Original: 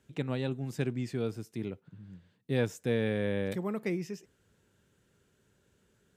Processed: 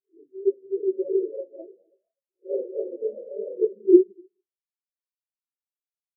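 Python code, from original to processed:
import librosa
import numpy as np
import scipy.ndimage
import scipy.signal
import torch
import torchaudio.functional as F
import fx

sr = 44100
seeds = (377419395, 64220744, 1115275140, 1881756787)

y = fx.spec_swells(x, sr, rise_s=0.67)
y = scipy.signal.sosfilt(scipy.signal.butter(2, 200.0, 'highpass', fs=sr, output='sos'), y)
y = fx.peak_eq(y, sr, hz=380.0, db=15.0, octaves=0.31)
y = fx.echo_pitch(y, sr, ms=360, semitones=3, count=3, db_per_echo=-3.0)
y = fx.peak_eq(y, sr, hz=2600.0, db=-14.0, octaves=1.5)
y = y + 10.0 ** (-6.5 / 20.0) * np.pad(y, (int(251 * sr / 1000.0), 0))[:len(y)]
y = fx.room_shoebox(y, sr, seeds[0], volume_m3=110.0, walls='mixed', distance_m=1.1)
y = fx.spectral_expand(y, sr, expansion=4.0)
y = y * librosa.db_to_amplitude(3.5)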